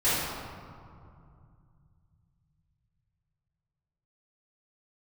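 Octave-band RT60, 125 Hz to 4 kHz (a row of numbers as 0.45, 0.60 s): 4.8, 3.4, 2.4, 2.4, 1.7, 1.1 s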